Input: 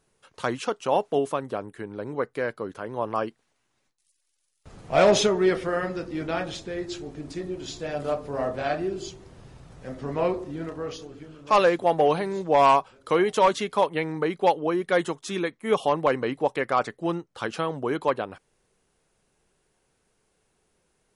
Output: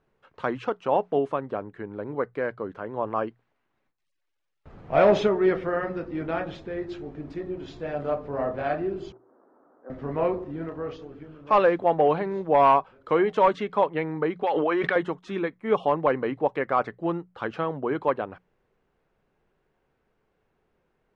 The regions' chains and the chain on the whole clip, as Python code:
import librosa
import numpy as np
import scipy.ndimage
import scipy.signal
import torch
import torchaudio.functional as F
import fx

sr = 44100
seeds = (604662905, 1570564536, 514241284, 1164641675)

y = fx.chain(x, sr, fx.ellip_bandpass(low_hz=270.0, high_hz=1400.0, order=3, stop_db=40),
    fx.level_steps(step_db=10), at=(9.12, 9.9))
y = fx.chain(y, sr, fx.highpass(hz=1500.0, slope=6),
    fx.air_absorb(metres=82.0),
    fx.env_flatten(amount_pct=100), at=(14.43, 14.96))
y = scipy.signal.sosfilt(scipy.signal.butter(2, 2100.0, 'lowpass', fs=sr, output='sos'), y)
y = fx.hum_notches(y, sr, base_hz=60, count=3)